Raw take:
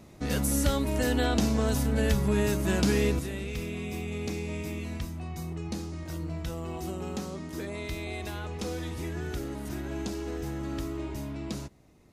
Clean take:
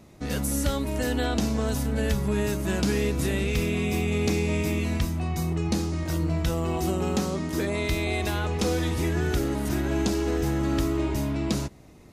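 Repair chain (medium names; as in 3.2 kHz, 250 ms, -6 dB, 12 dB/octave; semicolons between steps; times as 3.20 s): gain correction +9 dB, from 3.19 s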